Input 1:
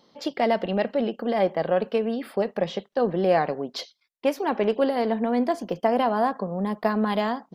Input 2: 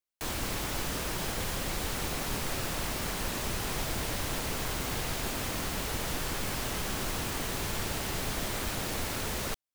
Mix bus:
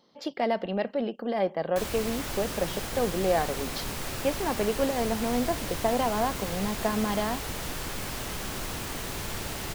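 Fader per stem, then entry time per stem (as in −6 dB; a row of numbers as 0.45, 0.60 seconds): −4.5, −1.0 decibels; 0.00, 1.55 seconds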